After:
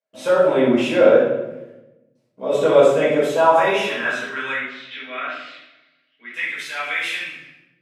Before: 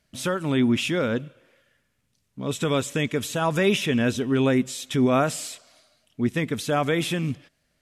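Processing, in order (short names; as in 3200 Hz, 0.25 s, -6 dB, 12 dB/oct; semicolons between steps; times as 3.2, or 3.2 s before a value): gate with hold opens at -53 dBFS; tilt -3 dB/oct; high-pass sweep 560 Hz -> 2100 Hz, 3.09–4.7; 4.52–6.34 speaker cabinet 220–3500 Hz, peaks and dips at 280 Hz +5 dB, 870 Hz -10 dB, 2400 Hz -5 dB; shoebox room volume 370 m³, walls mixed, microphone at 5.2 m; gain -6.5 dB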